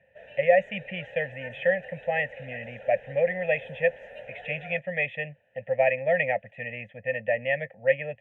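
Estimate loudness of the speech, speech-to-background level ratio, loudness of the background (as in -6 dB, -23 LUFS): -27.5 LUFS, 17.5 dB, -45.0 LUFS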